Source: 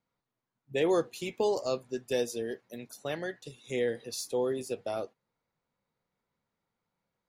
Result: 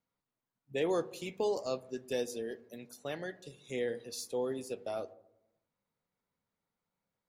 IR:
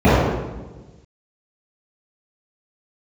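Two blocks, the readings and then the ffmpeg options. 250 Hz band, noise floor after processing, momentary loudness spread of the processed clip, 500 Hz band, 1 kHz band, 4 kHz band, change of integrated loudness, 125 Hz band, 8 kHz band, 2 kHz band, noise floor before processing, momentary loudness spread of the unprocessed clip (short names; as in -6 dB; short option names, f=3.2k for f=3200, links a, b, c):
-4.5 dB, under -85 dBFS, 12 LU, -4.5 dB, -4.5 dB, -4.5 dB, -4.5 dB, -4.5 dB, -4.5 dB, -4.5 dB, under -85 dBFS, 12 LU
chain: -filter_complex "[0:a]asplit=2[a][b];[1:a]atrim=start_sample=2205,asetrate=66150,aresample=44100[c];[b][c]afir=irnorm=-1:irlink=0,volume=-46.5dB[d];[a][d]amix=inputs=2:normalize=0,volume=-4.5dB"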